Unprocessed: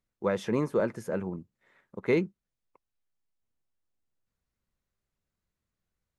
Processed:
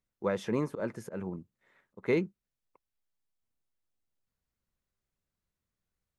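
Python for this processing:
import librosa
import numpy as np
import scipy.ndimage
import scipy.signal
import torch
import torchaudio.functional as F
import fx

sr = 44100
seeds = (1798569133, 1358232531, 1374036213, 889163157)

y = fx.auto_swell(x, sr, attack_ms=116.0, at=(0.58, 2.08))
y = y * 10.0 ** (-2.5 / 20.0)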